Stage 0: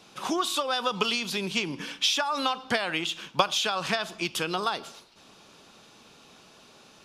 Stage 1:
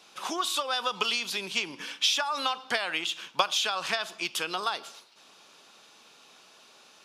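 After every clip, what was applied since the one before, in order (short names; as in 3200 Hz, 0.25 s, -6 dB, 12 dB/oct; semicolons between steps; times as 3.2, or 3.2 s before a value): HPF 730 Hz 6 dB/oct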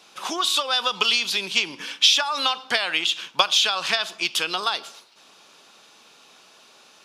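dynamic EQ 3800 Hz, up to +6 dB, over -40 dBFS, Q 0.84; gain +3.5 dB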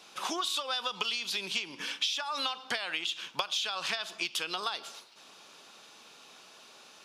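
compressor 4:1, threshold -29 dBFS, peak gain reduction 14.5 dB; gain -2 dB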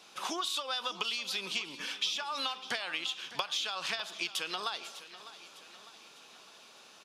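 feedback echo 0.603 s, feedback 53%, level -15.5 dB; gain -2 dB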